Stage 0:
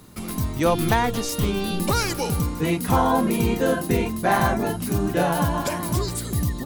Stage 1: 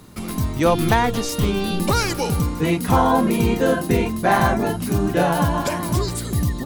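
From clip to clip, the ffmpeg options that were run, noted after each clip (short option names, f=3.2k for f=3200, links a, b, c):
-af "highshelf=f=8.7k:g=-5,volume=3dB"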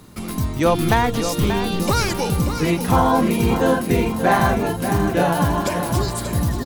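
-af "aecho=1:1:584|1168|1752|2336:0.355|0.121|0.041|0.0139"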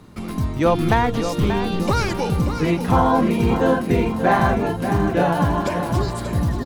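-af "lowpass=f=2.9k:p=1"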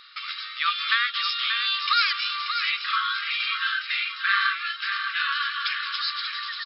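-filter_complex "[0:a]afftfilt=real='re*between(b*sr/4096,1100,5400)':imag='im*between(b*sr/4096,1100,5400)':win_size=4096:overlap=0.75,equalizer=f=3.8k:t=o:w=1:g=9.5,asplit=2[a][b];[b]alimiter=limit=-23.5dB:level=0:latency=1:release=489,volume=-1.5dB[c];[a][c]amix=inputs=2:normalize=0"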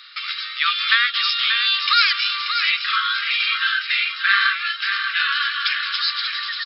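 -af "highpass=f=1.3k:w=0.5412,highpass=f=1.3k:w=1.3066,volume=6.5dB"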